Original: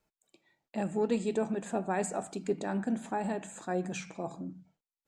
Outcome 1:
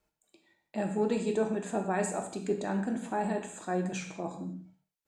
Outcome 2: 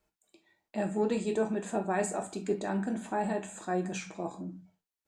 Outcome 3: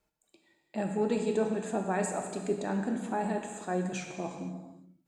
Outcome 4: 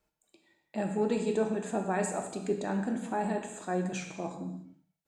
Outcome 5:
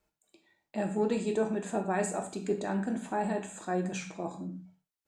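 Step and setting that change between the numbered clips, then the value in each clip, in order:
non-linear reverb, gate: 210, 90, 520, 320, 140 ms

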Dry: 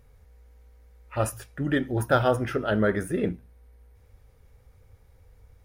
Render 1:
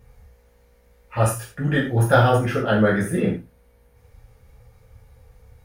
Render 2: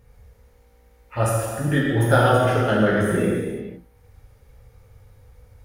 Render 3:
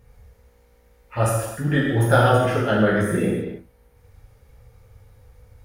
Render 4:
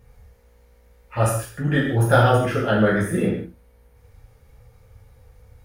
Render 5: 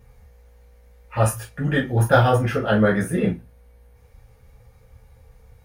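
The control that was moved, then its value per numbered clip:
non-linear reverb, gate: 130, 530, 350, 210, 80 ms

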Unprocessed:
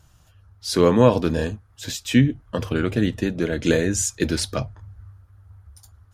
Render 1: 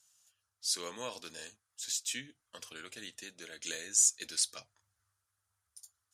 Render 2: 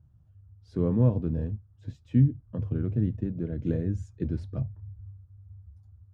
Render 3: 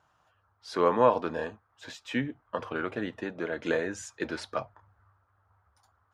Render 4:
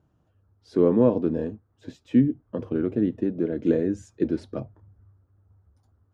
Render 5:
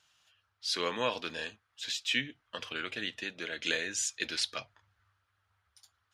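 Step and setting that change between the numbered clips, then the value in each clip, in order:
band-pass, frequency: 8000, 110, 1000, 310, 3000 Hz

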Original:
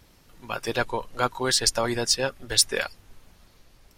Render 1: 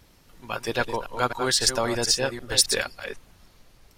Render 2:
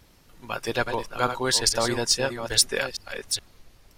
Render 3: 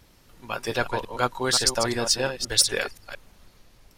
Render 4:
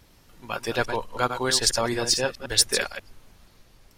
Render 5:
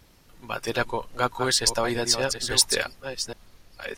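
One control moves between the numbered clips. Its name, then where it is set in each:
reverse delay, time: 0.266, 0.424, 0.175, 0.107, 0.666 s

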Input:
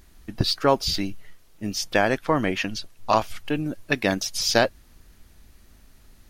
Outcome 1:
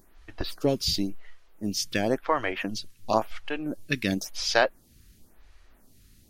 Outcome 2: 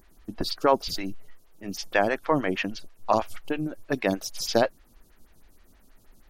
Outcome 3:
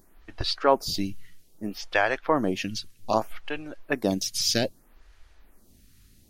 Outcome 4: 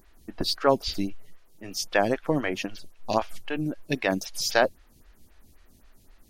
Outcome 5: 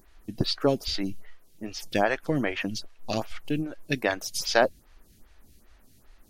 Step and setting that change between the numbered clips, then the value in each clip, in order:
photocell phaser, rate: 0.95, 6.3, 0.63, 3.8, 2.5 Hz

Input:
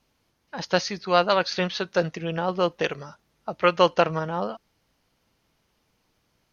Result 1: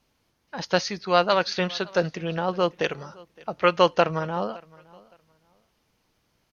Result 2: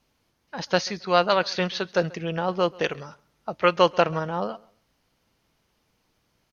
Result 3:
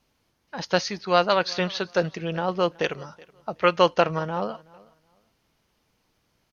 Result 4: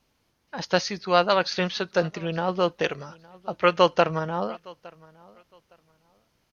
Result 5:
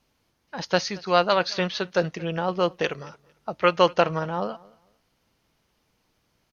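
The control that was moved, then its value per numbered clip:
feedback echo, time: 0.565, 0.135, 0.374, 0.862, 0.226 s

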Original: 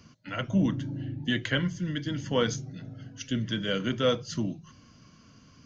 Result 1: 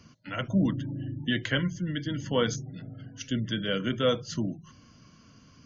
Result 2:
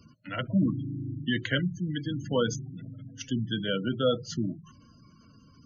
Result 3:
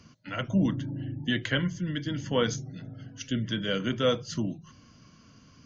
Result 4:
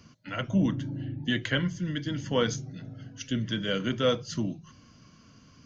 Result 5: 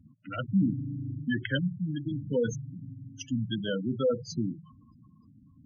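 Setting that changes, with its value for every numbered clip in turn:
spectral gate, under each frame's peak: -35, -20, -45, -60, -10 dB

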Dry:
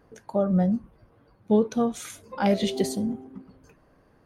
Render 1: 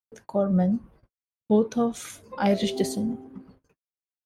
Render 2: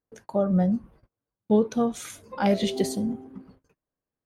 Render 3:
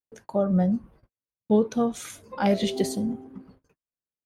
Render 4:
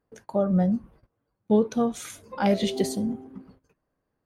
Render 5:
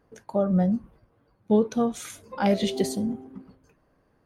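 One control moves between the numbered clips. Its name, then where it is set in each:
gate, range: -60, -31, -46, -19, -6 dB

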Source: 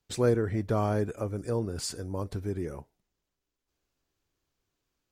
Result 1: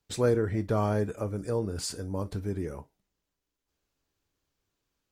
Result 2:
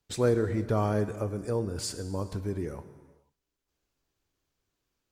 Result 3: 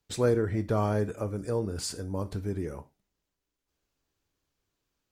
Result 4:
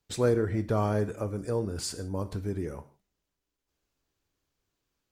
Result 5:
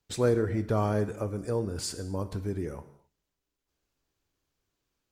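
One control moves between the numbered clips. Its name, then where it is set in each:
non-linear reverb, gate: 80, 520, 120, 190, 290 ms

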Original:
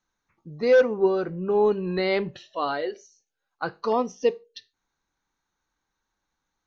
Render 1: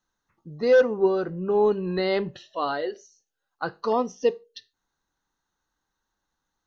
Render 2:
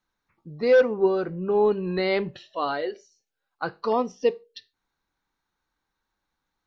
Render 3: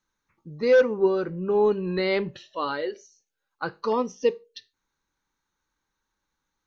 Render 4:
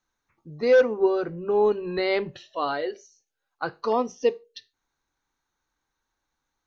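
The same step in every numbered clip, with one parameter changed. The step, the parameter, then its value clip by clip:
notch, frequency: 2300, 6300, 710, 190 Hz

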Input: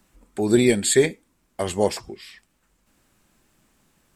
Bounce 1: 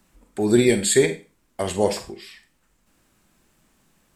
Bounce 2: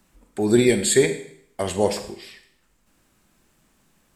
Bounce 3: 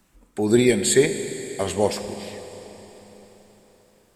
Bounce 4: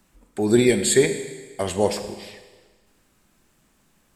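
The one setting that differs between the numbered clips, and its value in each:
Schroeder reverb, RT60: 0.31, 0.65, 4.3, 1.4 s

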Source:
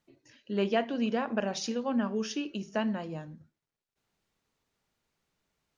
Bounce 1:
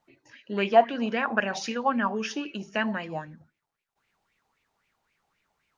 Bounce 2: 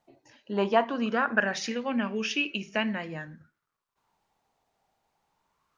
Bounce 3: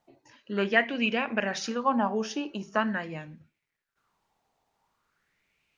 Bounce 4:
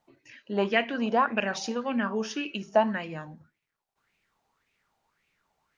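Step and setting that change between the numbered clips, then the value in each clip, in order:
LFO bell, rate: 3.8, 0.21, 0.44, 1.8 Hz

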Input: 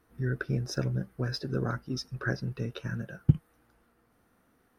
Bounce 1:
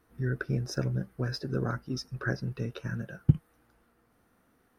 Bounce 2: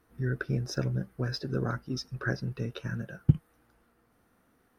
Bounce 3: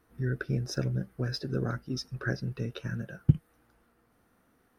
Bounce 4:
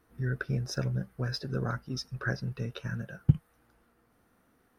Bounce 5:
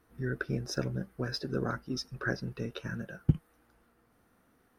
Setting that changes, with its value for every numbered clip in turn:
dynamic EQ, frequency: 3400, 9900, 1000, 320, 120 Hz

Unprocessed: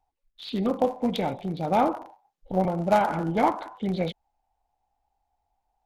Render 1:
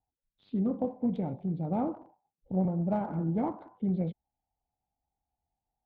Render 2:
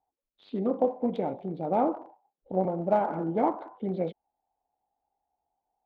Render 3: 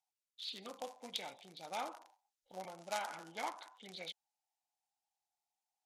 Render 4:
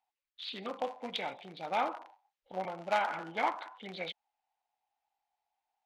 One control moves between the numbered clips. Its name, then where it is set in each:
band-pass, frequency: 150, 400, 7100, 2500 Hz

